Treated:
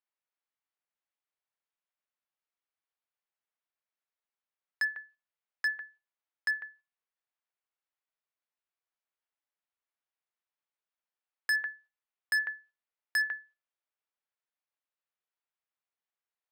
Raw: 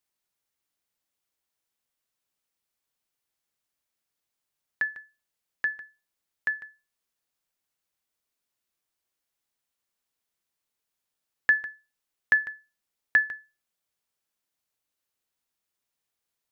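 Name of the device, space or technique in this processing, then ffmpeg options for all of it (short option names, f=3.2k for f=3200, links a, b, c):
walkie-talkie: -af "highpass=550,lowpass=2.6k,asoftclip=type=hard:threshold=-26.5dB,agate=range=-7dB:threshold=-59dB:ratio=16:detection=peak,volume=1.5dB"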